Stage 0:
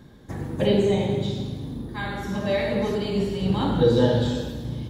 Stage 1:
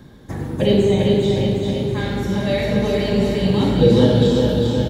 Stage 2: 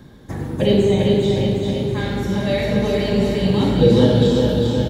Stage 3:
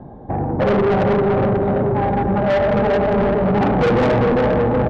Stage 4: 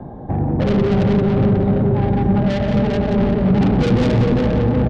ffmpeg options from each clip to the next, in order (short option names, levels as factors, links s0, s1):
-filter_complex "[0:a]acrossover=split=710|1800[s0][s1][s2];[s1]acompressor=threshold=0.00708:ratio=6[s3];[s0][s3][s2]amix=inputs=3:normalize=0,aecho=1:1:400|760|1084|1376|1638:0.631|0.398|0.251|0.158|0.1,volume=1.78"
-af anull
-af "lowpass=f=770:t=q:w=4.9,asoftclip=type=tanh:threshold=0.119,volume=1.78"
-filter_complex "[0:a]acrossover=split=310|3000[s0][s1][s2];[s1]acompressor=threshold=0.00891:ratio=2[s3];[s0][s3][s2]amix=inputs=3:normalize=0,asplit=2[s4][s5];[s5]aecho=0:1:177:0.355[s6];[s4][s6]amix=inputs=2:normalize=0,volume=1.68"